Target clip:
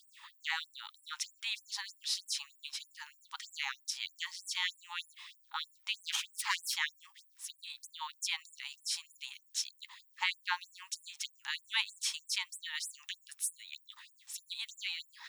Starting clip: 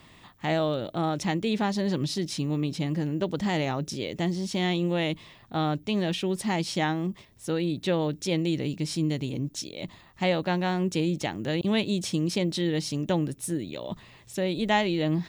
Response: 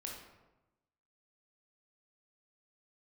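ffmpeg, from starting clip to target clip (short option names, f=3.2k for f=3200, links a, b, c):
-filter_complex "[0:a]asettb=1/sr,asplit=3[a][b][c];[a]atrim=end=5.944[d];[b]atrim=start=5.94:end=6.76,asetpts=PTS-STARTPTS,afade=t=in:d=0.004:c=qsin,afade=t=out:st=0.816:d=0.004:c=qsin,aeval=exprs='0.188*(cos(1*acos(clip(val(0)/0.188,-1,1)))-cos(1*PI/2))+0.075*(cos(3*acos(clip(val(0)/0.188,-1,1)))-cos(3*PI/2))+0.0841*(cos(4*acos(clip(val(0)/0.188,-1,1)))-cos(4*PI/2))+0.0422*(cos(5*acos(clip(val(0)/0.188,-1,1)))-cos(5*PI/2))':c=same[e];[c]atrim=start=6.756[f];[d][e]acrossfade=d=0.004:c1=hsin:c2=qsin[g];[g][f]acrossfade=d=0.004:c1=qsin:c2=hsin,afftfilt=real='re*gte(b*sr/1024,780*pow(7700/780,0.5+0.5*sin(2*PI*3.2*pts/sr)))':imag='im*gte(b*sr/1024,780*pow(7700/780,0.5+0.5*sin(2*PI*3.2*pts/sr)))':win_size=1024:overlap=0.75"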